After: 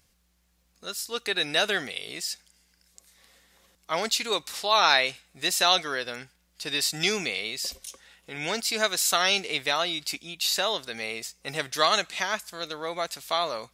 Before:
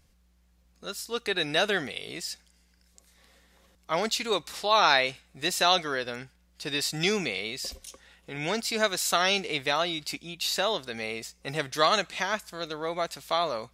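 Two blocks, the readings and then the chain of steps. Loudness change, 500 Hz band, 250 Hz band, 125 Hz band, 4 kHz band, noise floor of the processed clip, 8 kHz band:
+1.5 dB, -1.5 dB, -3.0 dB, -4.0 dB, +3.0 dB, -68 dBFS, +4.5 dB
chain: tilt +1.5 dB/oct

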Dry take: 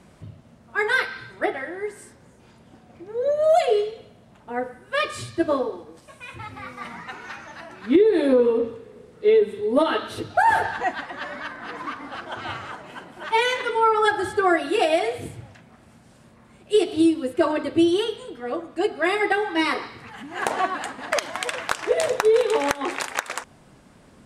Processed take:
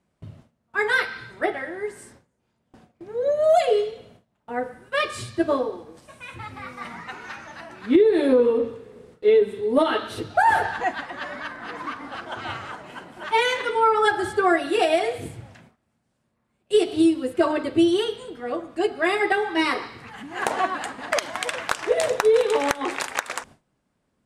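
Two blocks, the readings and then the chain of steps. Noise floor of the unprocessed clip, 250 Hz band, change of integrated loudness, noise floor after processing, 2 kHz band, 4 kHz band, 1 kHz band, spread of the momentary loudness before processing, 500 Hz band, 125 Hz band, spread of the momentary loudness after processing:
-53 dBFS, 0.0 dB, 0.0 dB, -73 dBFS, 0.0 dB, 0.0 dB, 0.0 dB, 18 LU, 0.0 dB, 0.0 dB, 18 LU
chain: gate with hold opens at -38 dBFS

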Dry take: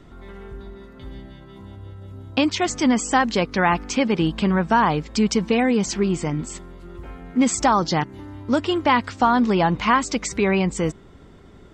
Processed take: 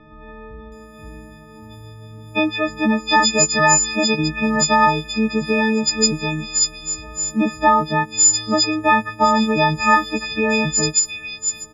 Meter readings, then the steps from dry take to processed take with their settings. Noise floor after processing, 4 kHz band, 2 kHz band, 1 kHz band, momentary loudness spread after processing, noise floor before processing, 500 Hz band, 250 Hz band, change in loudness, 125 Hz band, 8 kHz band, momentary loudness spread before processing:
-41 dBFS, +8.0 dB, +6.0 dB, +3.0 dB, 9 LU, -46 dBFS, +1.5 dB, 0.0 dB, +3.5 dB, -0.5 dB, +13.5 dB, 21 LU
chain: frequency quantiser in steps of 6 st; bands offset in time lows, highs 0.72 s, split 2900 Hz

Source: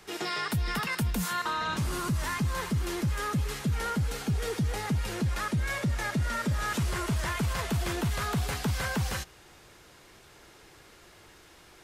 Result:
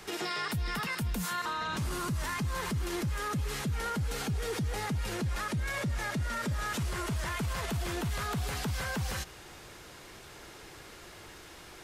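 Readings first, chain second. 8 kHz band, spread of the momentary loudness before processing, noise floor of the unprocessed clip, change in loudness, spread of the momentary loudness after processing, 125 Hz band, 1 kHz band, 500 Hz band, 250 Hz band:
-2.0 dB, 2 LU, -55 dBFS, -3.0 dB, 15 LU, -4.0 dB, -2.5 dB, -2.0 dB, -4.0 dB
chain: limiter -31.5 dBFS, peak gain reduction 11 dB; gain +5 dB

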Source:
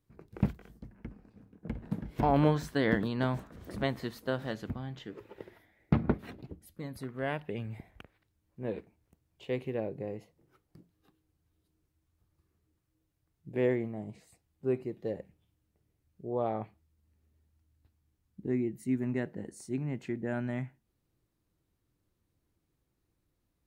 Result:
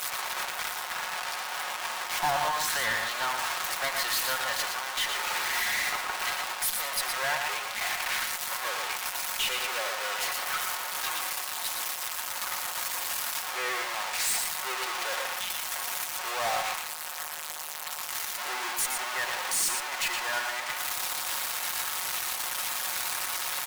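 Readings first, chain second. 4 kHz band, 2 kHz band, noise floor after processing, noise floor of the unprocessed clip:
+21.5 dB, +15.0 dB, -37 dBFS, -79 dBFS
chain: zero-crossing step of -26.5 dBFS; HPF 860 Hz 24 dB/oct; comb 5.5 ms, depth 45%; in parallel at +1 dB: limiter -25 dBFS, peak gain reduction 7 dB; on the sum: one-sided clip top -27 dBFS; echo 0.117 s -5.5 dB

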